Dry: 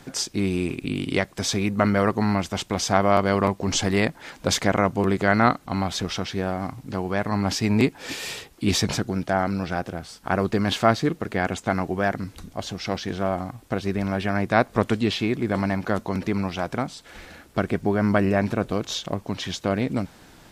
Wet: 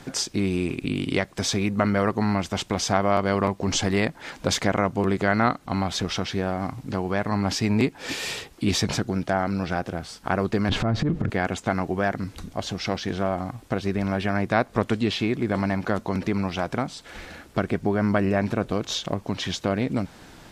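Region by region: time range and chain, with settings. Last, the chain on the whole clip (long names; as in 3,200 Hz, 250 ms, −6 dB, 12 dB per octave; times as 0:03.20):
0:10.69–0:11.30: RIAA equalisation playback + transient designer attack −11 dB, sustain +9 dB + downward compressor 3 to 1, threshold −19 dBFS
whole clip: high-shelf EQ 12,000 Hz −8 dB; downward compressor 1.5 to 1, threshold −29 dBFS; level +3 dB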